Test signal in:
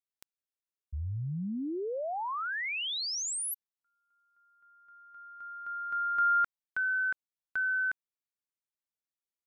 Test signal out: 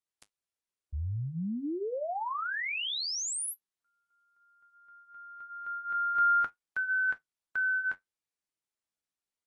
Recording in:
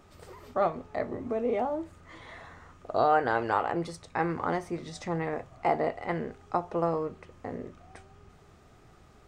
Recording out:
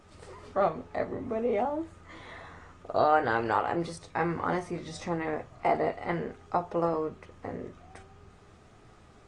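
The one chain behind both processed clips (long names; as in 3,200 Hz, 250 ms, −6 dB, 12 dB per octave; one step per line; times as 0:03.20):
flanger 0.57 Hz, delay 9.2 ms, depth 1.8 ms, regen −55%
level +4.5 dB
AAC 32 kbit/s 24,000 Hz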